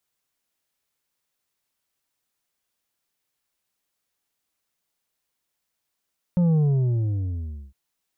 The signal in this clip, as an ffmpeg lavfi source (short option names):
-f lavfi -i "aevalsrc='0.141*clip((1.36-t)/1.18,0,1)*tanh(2*sin(2*PI*180*1.36/log(65/180)*(exp(log(65/180)*t/1.36)-1)))/tanh(2)':d=1.36:s=44100"